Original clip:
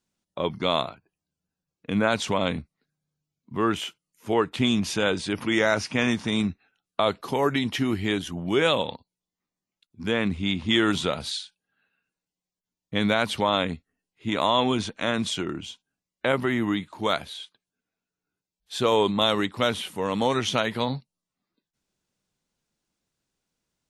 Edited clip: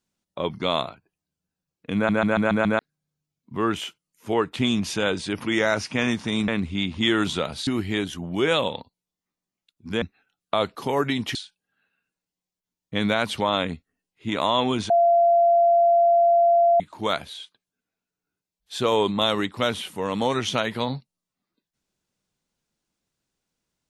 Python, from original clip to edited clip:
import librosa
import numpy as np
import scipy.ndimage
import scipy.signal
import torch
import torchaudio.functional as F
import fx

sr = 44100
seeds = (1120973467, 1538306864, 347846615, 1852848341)

y = fx.edit(x, sr, fx.stutter_over(start_s=1.95, slice_s=0.14, count=6),
    fx.swap(start_s=6.48, length_s=1.33, other_s=10.16, other_length_s=1.19),
    fx.bleep(start_s=14.9, length_s=1.9, hz=686.0, db=-14.0), tone=tone)